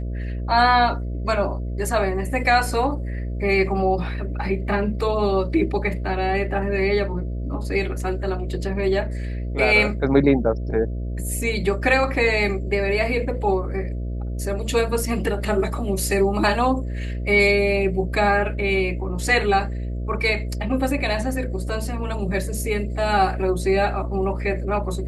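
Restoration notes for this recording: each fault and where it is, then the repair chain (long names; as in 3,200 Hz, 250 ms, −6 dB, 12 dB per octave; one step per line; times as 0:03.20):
mains buzz 60 Hz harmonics 11 −27 dBFS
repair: hum removal 60 Hz, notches 11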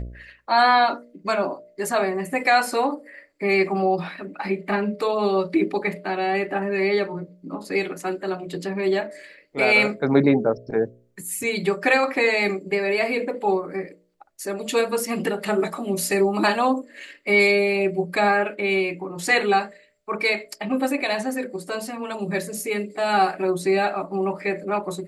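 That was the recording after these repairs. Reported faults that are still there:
none of them is left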